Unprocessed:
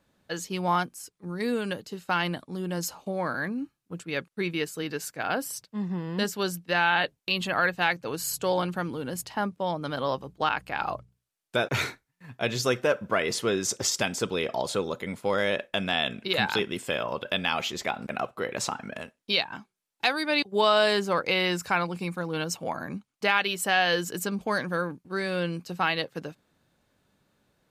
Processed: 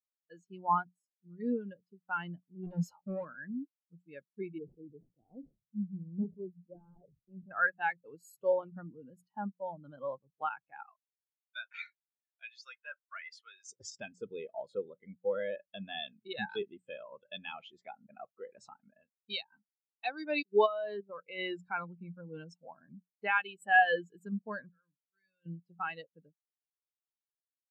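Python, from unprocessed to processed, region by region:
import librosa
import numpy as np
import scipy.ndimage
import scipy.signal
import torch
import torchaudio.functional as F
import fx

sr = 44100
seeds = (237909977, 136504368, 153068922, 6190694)

y = fx.chain(x, sr, fx.leveller(passes=3),
    fx.clip_hard(threshold_db=-26.0), at=(2.63, 3.25))
y = fx.chain(y, sr, fx.median_filter(points=41),
    fx.moving_average(points=23),
    fx.sustainer(db_per_s=86.0), at=(4.58, 7.51))
y = fx.chain(y, sr, fx.highpass(hz=1500.0, slope=12),
    fx.high_shelf(hz=6100.0, db=-6.5),
    fx.leveller(passes=1), at=(10.83, 13.66))
y = fx.chain(y, sr, fx.high_shelf(hz=6700.0, db=-9.0),
    fx.level_steps(step_db=14), at=(20.66, 21.39))
y = fx.chain(y, sr, fx.tone_stack(knobs='5-5-5'),
    fx.transient(attack_db=-3, sustain_db=7), at=(24.69, 25.46))
y = fx.peak_eq(y, sr, hz=460.0, db=-2.5, octaves=2.3)
y = fx.hum_notches(y, sr, base_hz=60, count=3)
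y = fx.spectral_expand(y, sr, expansion=2.5)
y = y * librosa.db_to_amplitude(-4.0)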